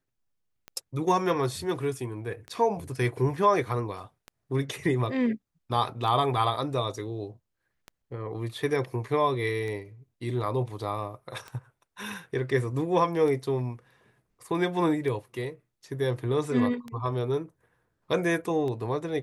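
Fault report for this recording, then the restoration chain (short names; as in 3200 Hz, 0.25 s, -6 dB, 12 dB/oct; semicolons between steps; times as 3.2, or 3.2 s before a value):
tick 33 1/3 rpm -24 dBFS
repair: de-click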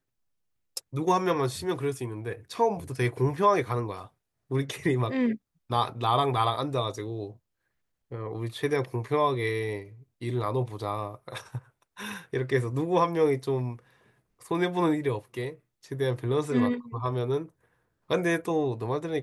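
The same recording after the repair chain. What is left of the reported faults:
none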